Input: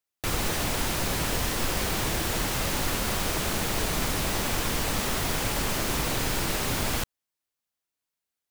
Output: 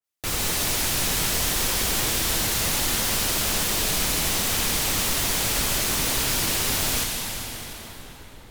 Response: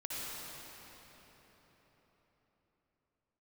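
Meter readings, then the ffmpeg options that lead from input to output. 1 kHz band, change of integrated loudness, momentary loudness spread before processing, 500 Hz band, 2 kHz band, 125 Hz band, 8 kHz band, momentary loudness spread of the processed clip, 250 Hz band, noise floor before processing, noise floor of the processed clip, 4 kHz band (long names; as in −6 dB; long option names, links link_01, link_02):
+0.5 dB, +5.0 dB, 0 LU, −0.5 dB, +3.0 dB, −0.5 dB, +8.0 dB, 7 LU, −0.5 dB, below −85 dBFS, −44 dBFS, +6.5 dB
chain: -filter_complex "[0:a]asplit=2[link_01][link_02];[1:a]atrim=start_sample=2205,asetrate=33516,aresample=44100,highshelf=frequency=2200:gain=10.5[link_03];[link_02][link_03]afir=irnorm=-1:irlink=0,volume=-7dB[link_04];[link_01][link_04]amix=inputs=2:normalize=0,adynamicequalizer=threshold=0.01:dfrequency=2300:dqfactor=0.7:tfrequency=2300:tqfactor=0.7:attack=5:release=100:ratio=0.375:range=2:mode=boostabove:tftype=highshelf,volume=-4dB"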